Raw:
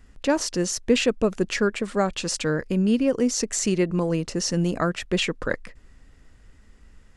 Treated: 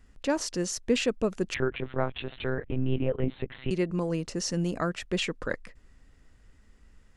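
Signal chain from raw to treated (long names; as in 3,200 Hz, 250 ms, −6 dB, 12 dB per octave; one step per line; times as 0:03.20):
0:01.54–0:03.71: one-pitch LPC vocoder at 8 kHz 130 Hz
level −5.5 dB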